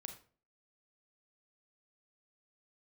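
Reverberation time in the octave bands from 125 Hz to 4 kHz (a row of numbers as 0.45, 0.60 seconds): 0.50, 0.50, 0.45, 0.40, 0.35, 0.30 seconds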